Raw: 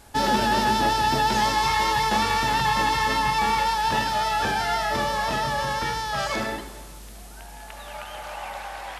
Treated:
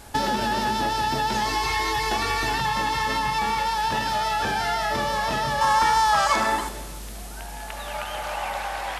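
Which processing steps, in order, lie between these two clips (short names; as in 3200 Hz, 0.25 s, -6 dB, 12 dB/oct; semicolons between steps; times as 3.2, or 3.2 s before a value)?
1.46–2.58 comb 2.7 ms, depth 67%; compressor, threshold -27 dBFS, peak gain reduction 10 dB; 5.61–6.69 ten-band EQ 125 Hz -7 dB, 500 Hz -4 dB, 1000 Hz +11 dB, 8000 Hz +6 dB; gain +5.5 dB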